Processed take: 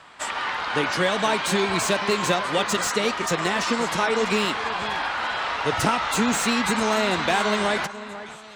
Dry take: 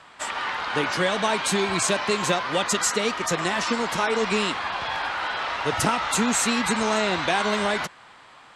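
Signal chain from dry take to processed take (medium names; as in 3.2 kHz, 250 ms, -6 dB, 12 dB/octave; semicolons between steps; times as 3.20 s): echo whose repeats swap between lows and highs 491 ms, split 2.3 kHz, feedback 54%, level -13.5 dB; slew-rate limiter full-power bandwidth 330 Hz; trim +1 dB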